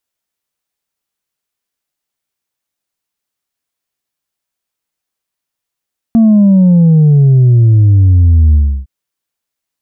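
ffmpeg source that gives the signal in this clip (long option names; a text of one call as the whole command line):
ffmpeg -f lavfi -i "aevalsrc='0.631*clip((2.71-t)/0.32,0,1)*tanh(1.26*sin(2*PI*230*2.71/log(65/230)*(exp(log(65/230)*t/2.71)-1)))/tanh(1.26)':duration=2.71:sample_rate=44100" out.wav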